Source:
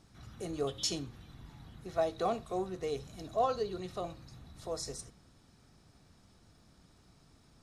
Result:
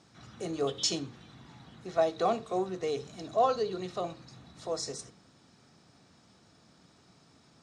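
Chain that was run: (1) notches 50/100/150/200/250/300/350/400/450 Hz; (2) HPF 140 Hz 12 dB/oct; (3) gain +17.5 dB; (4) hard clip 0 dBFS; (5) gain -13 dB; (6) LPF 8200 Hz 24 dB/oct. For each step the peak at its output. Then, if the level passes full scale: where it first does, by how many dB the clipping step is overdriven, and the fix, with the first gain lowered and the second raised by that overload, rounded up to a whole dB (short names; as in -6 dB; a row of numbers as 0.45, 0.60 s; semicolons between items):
-19.5, -19.5, -2.0, -2.0, -15.0, -15.0 dBFS; no overload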